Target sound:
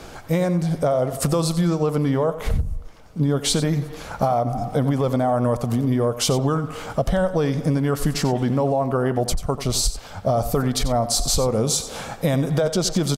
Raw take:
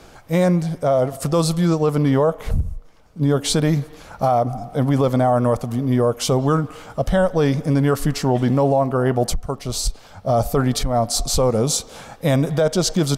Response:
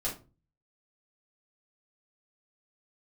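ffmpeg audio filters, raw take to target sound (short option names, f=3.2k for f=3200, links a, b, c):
-af "acompressor=threshold=-23dB:ratio=6,aecho=1:1:91:0.224,volume=5.5dB"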